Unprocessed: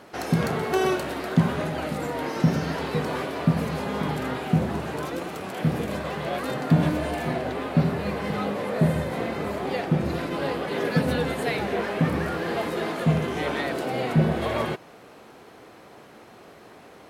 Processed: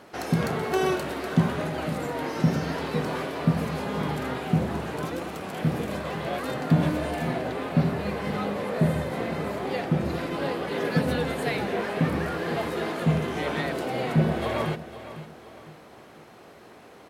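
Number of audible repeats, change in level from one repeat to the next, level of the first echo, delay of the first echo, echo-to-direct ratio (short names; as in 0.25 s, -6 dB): 3, -8.0 dB, -14.0 dB, 0.503 s, -13.5 dB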